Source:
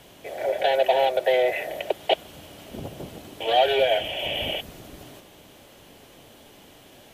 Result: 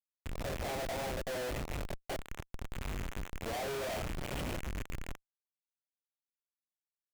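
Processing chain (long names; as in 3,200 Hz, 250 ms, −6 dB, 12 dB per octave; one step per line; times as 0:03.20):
loose part that buzzes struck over −46 dBFS, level −17 dBFS
chorus effect 0.66 Hz, delay 20 ms, depth 7 ms
comparator with hysteresis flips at −25.5 dBFS
level −7.5 dB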